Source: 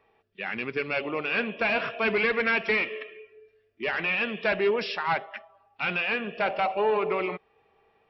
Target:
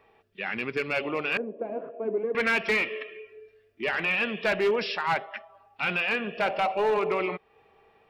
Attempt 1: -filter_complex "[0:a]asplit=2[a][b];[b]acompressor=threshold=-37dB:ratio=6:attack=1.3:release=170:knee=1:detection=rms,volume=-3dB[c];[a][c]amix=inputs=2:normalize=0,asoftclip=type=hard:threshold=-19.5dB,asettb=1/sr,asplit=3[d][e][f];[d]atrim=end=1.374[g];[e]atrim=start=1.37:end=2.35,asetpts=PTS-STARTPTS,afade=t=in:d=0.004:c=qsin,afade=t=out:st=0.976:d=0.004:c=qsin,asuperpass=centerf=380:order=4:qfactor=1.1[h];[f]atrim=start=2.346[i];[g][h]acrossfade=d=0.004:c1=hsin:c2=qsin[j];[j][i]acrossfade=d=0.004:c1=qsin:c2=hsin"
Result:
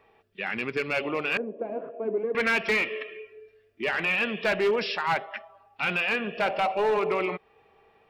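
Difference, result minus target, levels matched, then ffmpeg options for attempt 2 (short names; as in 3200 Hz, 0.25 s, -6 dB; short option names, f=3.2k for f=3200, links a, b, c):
compressor: peak gain reduction -6.5 dB
-filter_complex "[0:a]asplit=2[a][b];[b]acompressor=threshold=-45dB:ratio=6:attack=1.3:release=170:knee=1:detection=rms,volume=-3dB[c];[a][c]amix=inputs=2:normalize=0,asoftclip=type=hard:threshold=-19.5dB,asettb=1/sr,asplit=3[d][e][f];[d]atrim=end=1.374[g];[e]atrim=start=1.37:end=2.35,asetpts=PTS-STARTPTS,afade=t=in:d=0.004:c=qsin,afade=t=out:st=0.976:d=0.004:c=qsin,asuperpass=centerf=380:order=4:qfactor=1.1[h];[f]atrim=start=2.346[i];[g][h]acrossfade=d=0.004:c1=hsin:c2=qsin[j];[j][i]acrossfade=d=0.004:c1=qsin:c2=hsin"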